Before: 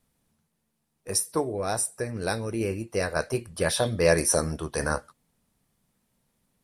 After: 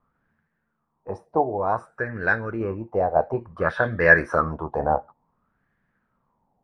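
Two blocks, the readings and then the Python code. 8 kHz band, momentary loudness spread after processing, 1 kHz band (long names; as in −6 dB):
below −30 dB, 13 LU, +9.0 dB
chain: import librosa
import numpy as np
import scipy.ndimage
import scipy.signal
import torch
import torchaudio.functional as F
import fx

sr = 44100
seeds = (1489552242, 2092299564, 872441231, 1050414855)

y = fx.filter_lfo_lowpass(x, sr, shape='sine', hz=0.56, low_hz=760.0, high_hz=1700.0, q=7.4)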